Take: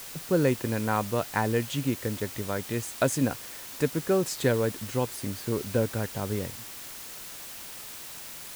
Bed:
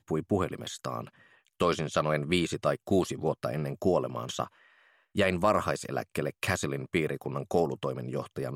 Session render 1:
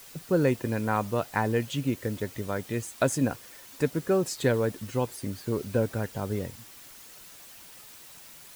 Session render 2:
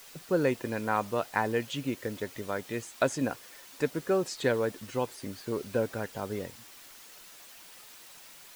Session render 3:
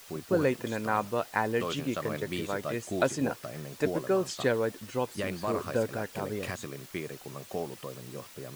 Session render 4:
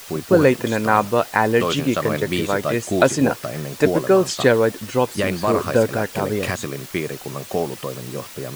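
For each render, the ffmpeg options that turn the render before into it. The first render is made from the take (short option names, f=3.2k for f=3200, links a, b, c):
-af "afftdn=nr=8:nf=-42"
-filter_complex "[0:a]acrossover=split=6500[a][b];[b]acompressor=threshold=-49dB:ratio=4:attack=1:release=60[c];[a][c]amix=inputs=2:normalize=0,equalizer=f=72:w=0.37:g=-10.5"
-filter_complex "[1:a]volume=-8.5dB[a];[0:a][a]amix=inputs=2:normalize=0"
-af "volume=12dB,alimiter=limit=-1dB:level=0:latency=1"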